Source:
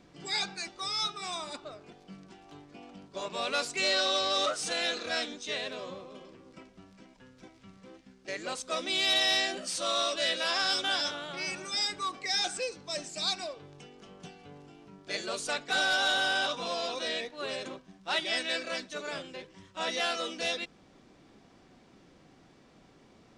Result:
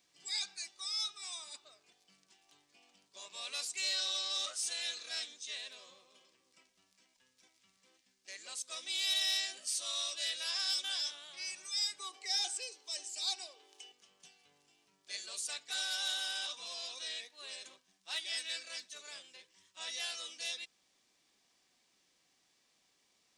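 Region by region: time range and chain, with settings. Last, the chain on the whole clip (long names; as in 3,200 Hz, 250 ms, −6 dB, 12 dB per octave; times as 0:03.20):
0:11.99–0:13.92: Butterworth high-pass 250 Hz 48 dB per octave + hollow resonant body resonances 400/780/3,000 Hz, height 12 dB, ringing for 35 ms + one half of a high-frequency compander encoder only
whole clip: first-order pre-emphasis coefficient 0.97; notch filter 1,400 Hz, Q 9.8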